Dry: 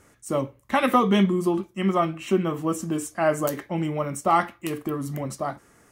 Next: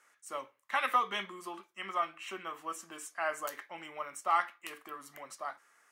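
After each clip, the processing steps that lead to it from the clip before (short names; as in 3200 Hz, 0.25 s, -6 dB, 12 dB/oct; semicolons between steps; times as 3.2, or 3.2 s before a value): Chebyshev high-pass 1400 Hz, order 2; tilt -2 dB/oct; gain -3 dB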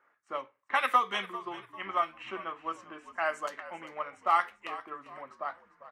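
low-pass opened by the level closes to 1300 Hz, open at -27.5 dBFS; frequency-shifting echo 0.396 s, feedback 37%, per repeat -62 Hz, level -15 dB; transient shaper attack +2 dB, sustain -2 dB; gain +2.5 dB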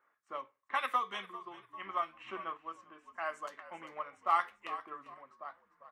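random-step tremolo 3.5 Hz; small resonant body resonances 1100/3500 Hz, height 8 dB; gain -4.5 dB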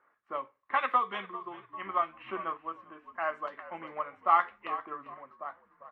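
air absorption 400 m; gain +7.5 dB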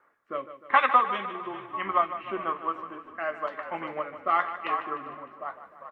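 rotary speaker horn 1 Hz; on a send: feedback echo 0.152 s, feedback 56%, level -12 dB; on the sum: gain +8.5 dB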